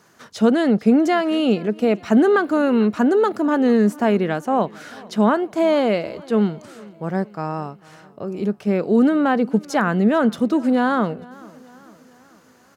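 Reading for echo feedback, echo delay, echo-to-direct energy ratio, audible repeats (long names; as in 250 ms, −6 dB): 53%, 446 ms, −21.5 dB, 3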